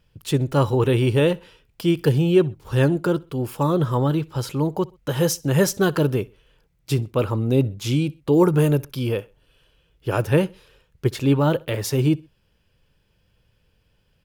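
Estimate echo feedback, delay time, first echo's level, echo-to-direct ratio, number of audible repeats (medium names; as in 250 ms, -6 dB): 38%, 64 ms, -24.0 dB, -23.5 dB, 2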